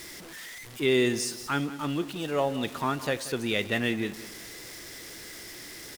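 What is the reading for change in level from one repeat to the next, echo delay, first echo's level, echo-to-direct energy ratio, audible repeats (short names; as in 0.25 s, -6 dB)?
-10.0 dB, 0.183 s, -15.5 dB, -15.0 dB, 2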